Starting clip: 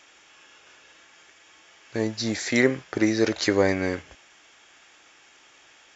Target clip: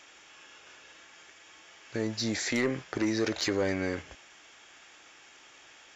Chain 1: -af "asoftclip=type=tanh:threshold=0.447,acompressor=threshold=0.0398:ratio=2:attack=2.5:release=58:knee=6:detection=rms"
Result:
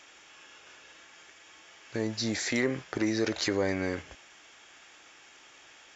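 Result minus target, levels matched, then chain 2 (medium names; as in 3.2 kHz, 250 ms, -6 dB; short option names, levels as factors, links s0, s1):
saturation: distortion -10 dB
-af "asoftclip=type=tanh:threshold=0.2,acompressor=threshold=0.0398:ratio=2:attack=2.5:release=58:knee=6:detection=rms"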